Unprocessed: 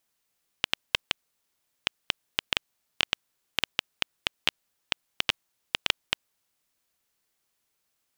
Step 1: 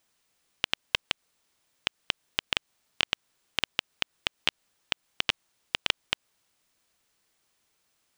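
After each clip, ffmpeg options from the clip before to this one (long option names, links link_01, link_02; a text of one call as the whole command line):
ffmpeg -i in.wav -af "equalizer=frequency=15000:width=1.4:gain=-15,alimiter=limit=-10dB:level=0:latency=1:release=136,volume=6dB" out.wav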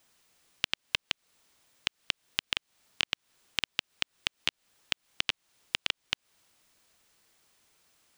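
ffmpeg -i in.wav -filter_complex "[0:a]acrossover=split=440|1900|5000[link_01][link_02][link_03][link_04];[link_01]acompressor=threshold=-52dB:ratio=4[link_05];[link_02]acompressor=threshold=-45dB:ratio=4[link_06];[link_03]acompressor=threshold=-34dB:ratio=4[link_07];[link_04]acompressor=threshold=-51dB:ratio=4[link_08];[link_05][link_06][link_07][link_08]amix=inputs=4:normalize=0,volume=5.5dB" out.wav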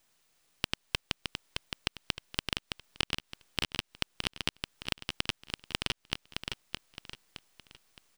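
ffmpeg -i in.wav -filter_complex "[0:a]aeval=exprs='if(lt(val(0),0),0.251*val(0),val(0))':channel_layout=same,asplit=2[link_01][link_02];[link_02]aecho=0:1:616|1232|1848|2464:0.562|0.197|0.0689|0.0241[link_03];[link_01][link_03]amix=inputs=2:normalize=0" out.wav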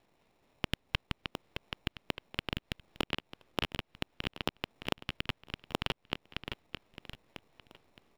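ffmpeg -i in.wav -filter_complex "[0:a]acrossover=split=420|3900[link_01][link_02][link_03];[link_02]tremolo=f=4.1:d=0.42[link_04];[link_03]acrusher=samples=28:mix=1:aa=0.000001[link_05];[link_01][link_04][link_05]amix=inputs=3:normalize=0,volume=1dB" out.wav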